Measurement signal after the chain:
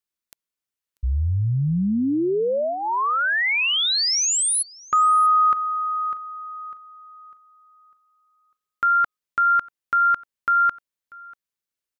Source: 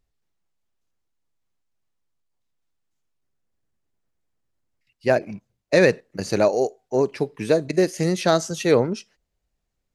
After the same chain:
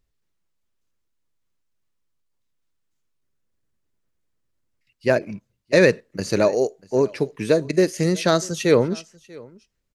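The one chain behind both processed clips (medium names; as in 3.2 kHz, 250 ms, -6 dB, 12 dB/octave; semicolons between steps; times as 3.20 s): peaking EQ 760 Hz -8 dB 0.29 oct; on a send: delay 640 ms -23.5 dB; on the sum: trim +1.5 dB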